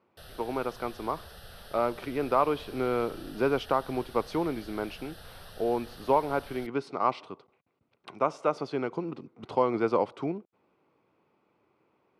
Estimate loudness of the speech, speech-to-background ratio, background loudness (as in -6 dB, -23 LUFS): -30.5 LUFS, 18.0 dB, -48.5 LUFS